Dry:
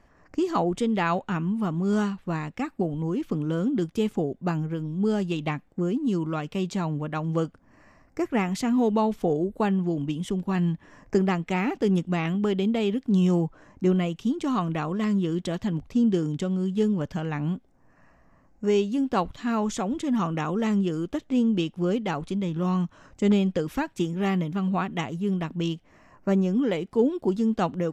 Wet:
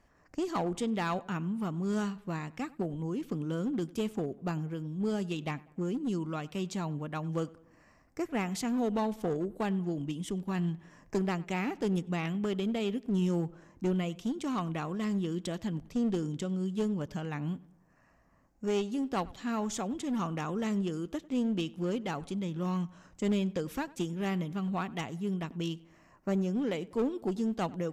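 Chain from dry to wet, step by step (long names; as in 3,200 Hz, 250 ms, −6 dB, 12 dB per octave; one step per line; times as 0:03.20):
high-shelf EQ 4,900 Hz +7.5 dB
asymmetric clip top −22.5 dBFS
on a send: feedback echo with a low-pass in the loop 97 ms, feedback 50%, low-pass 2,500 Hz, level −21 dB
on the sum: level −7 dB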